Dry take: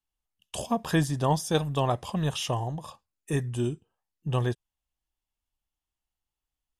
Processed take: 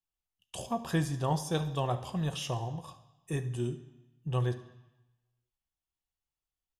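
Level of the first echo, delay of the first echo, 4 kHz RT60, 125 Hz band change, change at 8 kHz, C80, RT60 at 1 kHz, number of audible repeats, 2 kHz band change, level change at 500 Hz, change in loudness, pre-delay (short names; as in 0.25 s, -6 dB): -19.0 dB, 71 ms, 1.0 s, -3.5 dB, -6.0 dB, 15.5 dB, 1.1 s, 1, -6.0 dB, -5.5 dB, -5.0 dB, 3 ms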